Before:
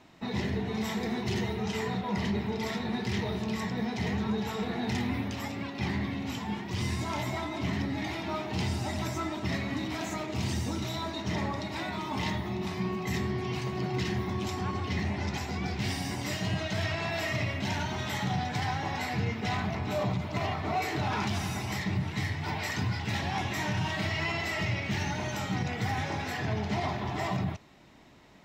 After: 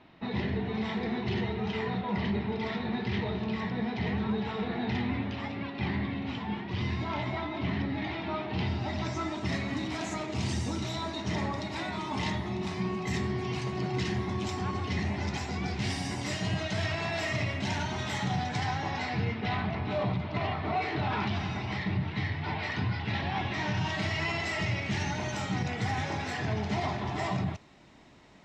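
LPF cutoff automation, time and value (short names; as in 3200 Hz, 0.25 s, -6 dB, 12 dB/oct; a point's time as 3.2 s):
LPF 24 dB/oct
8.79 s 4000 Hz
9.49 s 9600 Hz
18.42 s 9600 Hz
19.43 s 4200 Hz
23.44 s 4200 Hz
24.12 s 8900 Hz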